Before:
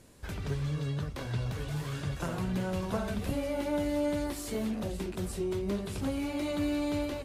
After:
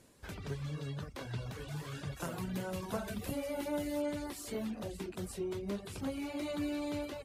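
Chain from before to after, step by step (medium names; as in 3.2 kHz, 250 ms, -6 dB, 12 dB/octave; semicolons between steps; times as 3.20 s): 2.17–4.02 s: treble shelf 9.7 kHz +11 dB; reverb removal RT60 0.55 s; bass shelf 87 Hz -8.5 dB; trim -3.5 dB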